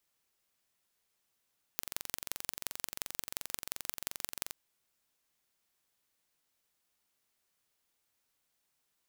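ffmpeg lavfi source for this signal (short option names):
-f lavfi -i "aevalsrc='0.501*eq(mod(n,1934),0)*(0.5+0.5*eq(mod(n,7736),0))':d=2.73:s=44100"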